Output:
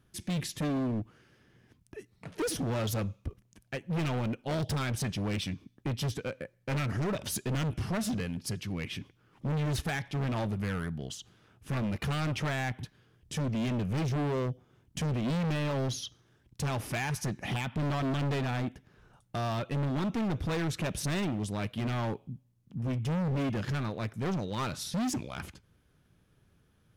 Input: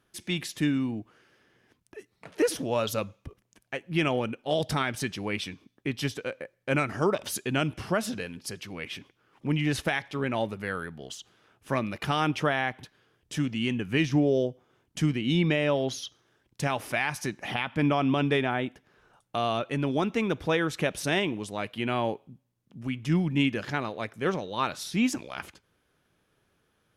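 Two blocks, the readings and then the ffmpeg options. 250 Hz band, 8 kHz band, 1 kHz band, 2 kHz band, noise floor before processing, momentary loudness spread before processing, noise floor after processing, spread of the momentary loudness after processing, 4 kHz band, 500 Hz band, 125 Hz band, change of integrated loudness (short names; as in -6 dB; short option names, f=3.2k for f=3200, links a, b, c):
-4.0 dB, -1.0 dB, -6.0 dB, -7.5 dB, -73 dBFS, 13 LU, -68 dBFS, 11 LU, -5.5 dB, -7.0 dB, +1.0 dB, -4.0 dB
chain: -af "bass=f=250:g=13,treble=f=4k:g=2,volume=26dB,asoftclip=hard,volume=-26dB,volume=-2.5dB"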